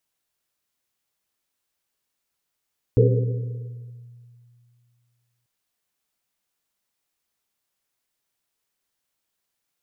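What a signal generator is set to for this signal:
drum after Risset length 2.49 s, pitch 120 Hz, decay 2.50 s, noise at 450 Hz, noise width 110 Hz, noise 30%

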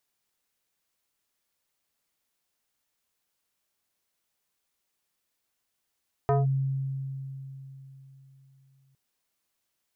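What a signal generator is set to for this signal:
two-operator FM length 2.66 s, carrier 135 Hz, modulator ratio 4.15, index 1.5, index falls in 0.17 s linear, decay 3.67 s, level −19 dB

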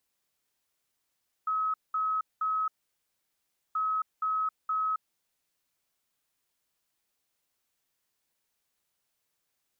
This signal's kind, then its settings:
beeps in groups sine 1,280 Hz, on 0.27 s, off 0.20 s, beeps 3, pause 1.07 s, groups 2, −26 dBFS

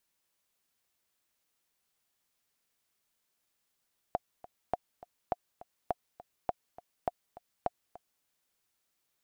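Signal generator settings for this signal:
click track 205 BPM, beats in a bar 2, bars 7, 714 Hz, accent 18.5 dB −16 dBFS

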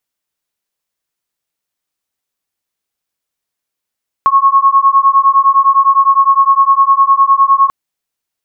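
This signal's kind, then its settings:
two tones that beat 1,090 Hz, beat 9.8 Hz, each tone −9 dBFS 3.44 s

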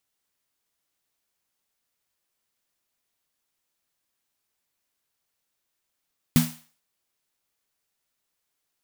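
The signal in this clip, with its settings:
synth snare length 0.44 s, tones 160 Hz, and 240 Hz, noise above 580 Hz, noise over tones −9 dB, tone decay 0.30 s, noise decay 0.44 s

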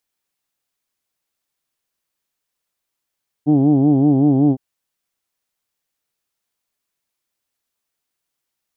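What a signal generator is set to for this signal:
vowel from formants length 1.11 s, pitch 143 Hz, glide −0.5 semitones, vibrato depth 1.15 semitones, F1 300 Hz, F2 760 Hz, F3 3,200 Hz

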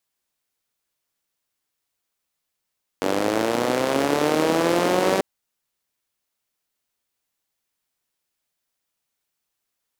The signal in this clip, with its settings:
pulse-train model of a four-cylinder engine, changing speed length 2.19 s, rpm 2,800, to 5,800, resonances 320/480 Hz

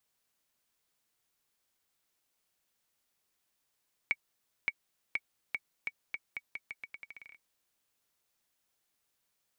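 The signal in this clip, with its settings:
bouncing ball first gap 0.57 s, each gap 0.83, 2,250 Hz, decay 46 ms −16.5 dBFS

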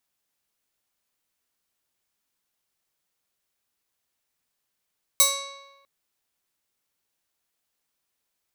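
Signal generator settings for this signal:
Karplus-Strong string C#5, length 0.65 s, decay 1.17 s, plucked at 0.33, bright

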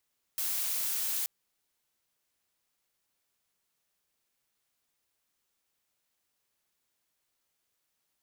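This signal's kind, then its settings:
noise blue, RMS −32 dBFS 0.88 s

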